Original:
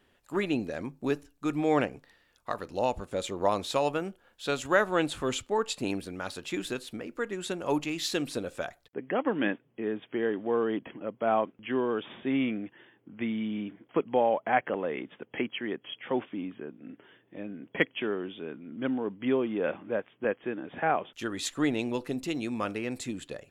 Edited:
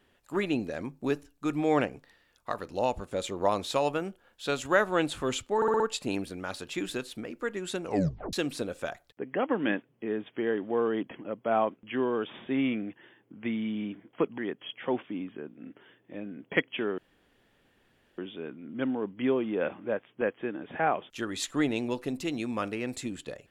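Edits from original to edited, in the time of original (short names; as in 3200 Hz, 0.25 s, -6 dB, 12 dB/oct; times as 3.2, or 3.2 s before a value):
5.56 stutter 0.06 s, 5 plays
7.59 tape stop 0.50 s
14.14–15.61 cut
18.21 insert room tone 1.20 s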